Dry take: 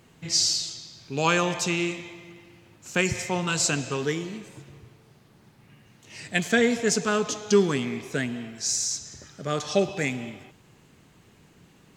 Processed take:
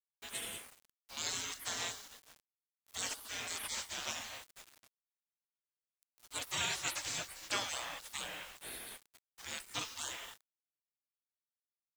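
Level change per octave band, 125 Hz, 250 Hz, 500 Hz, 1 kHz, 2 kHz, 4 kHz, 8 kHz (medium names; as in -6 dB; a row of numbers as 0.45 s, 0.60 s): -24.5 dB, -28.5 dB, -25.5 dB, -13.5 dB, -13.5 dB, -10.0 dB, -11.5 dB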